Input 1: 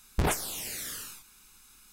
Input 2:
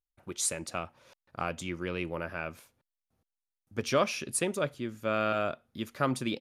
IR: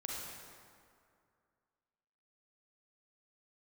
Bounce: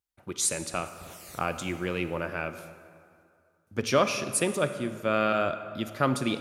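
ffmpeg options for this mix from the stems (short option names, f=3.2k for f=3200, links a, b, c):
-filter_complex "[0:a]adelay=550,volume=-9.5dB,asplit=2[a][b];[b]volume=-14.5dB[c];[1:a]volume=1.5dB,asplit=3[d][e][f];[e]volume=-7.5dB[g];[f]apad=whole_len=109052[h];[a][h]sidechaincompress=threshold=-41dB:ratio=8:attack=8.8:release=414[i];[2:a]atrim=start_sample=2205[j];[g][j]afir=irnorm=-1:irlink=0[k];[c]aecho=0:1:274|548|822|1096|1370|1644|1918|2192|2466:1|0.57|0.325|0.185|0.106|0.0602|0.0343|0.0195|0.0111[l];[i][d][k][l]amix=inputs=4:normalize=0,highpass=52"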